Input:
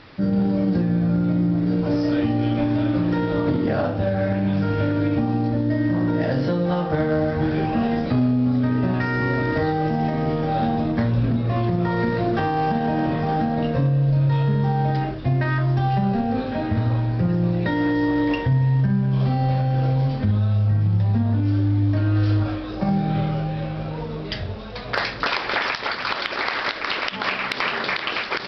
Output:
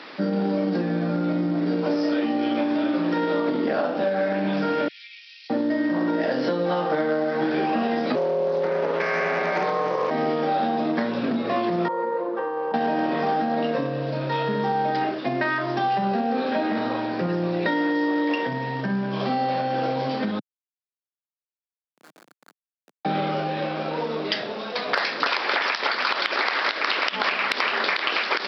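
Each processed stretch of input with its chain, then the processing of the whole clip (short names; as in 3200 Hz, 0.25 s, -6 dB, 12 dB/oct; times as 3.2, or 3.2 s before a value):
4.88–5.5 steep high-pass 2200 Hz 48 dB/oct + compressor 2.5:1, threshold -49 dBFS
8.15–10.11 ring modulator 290 Hz + Doppler distortion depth 0.32 ms
11.88–12.74 double band-pass 690 Hz, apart 0.82 oct + comb 5.8 ms, depth 46%
20.39–23.05 band-pass 1500 Hz, Q 9.2 + air absorption 340 m + Schmitt trigger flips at -40 dBFS
whole clip: Bessel high-pass 330 Hz, order 8; compressor, threshold -27 dBFS; gain +7 dB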